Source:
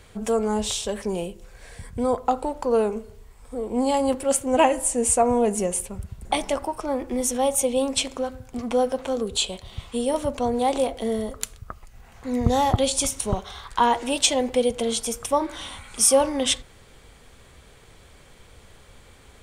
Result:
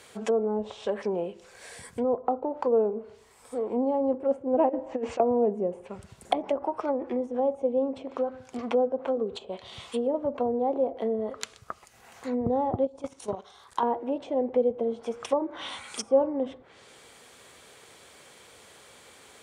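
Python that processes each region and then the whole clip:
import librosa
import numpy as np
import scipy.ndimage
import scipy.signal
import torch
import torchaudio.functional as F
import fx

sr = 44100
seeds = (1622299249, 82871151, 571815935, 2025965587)

y = fx.chain(x, sr, fx.lowpass(hz=5100.0, slope=24),
    fx.over_compress(threshold_db=-26.0, ratio=-0.5), at=(4.69, 5.2))
y = fx.chain(y, sr, fx.peak_eq(hz=2600.0, db=-7.5, octaves=2.6),
    fx.level_steps(step_db=13), at=(12.85, 13.83))
y = scipy.signal.sosfilt(scipy.signal.butter(2, 120.0, 'highpass', fs=sr, output='sos'), y)
y = fx.env_lowpass_down(y, sr, base_hz=530.0, full_db=-21.0)
y = fx.bass_treble(y, sr, bass_db=-10, treble_db=3)
y = y * 10.0 ** (1.0 / 20.0)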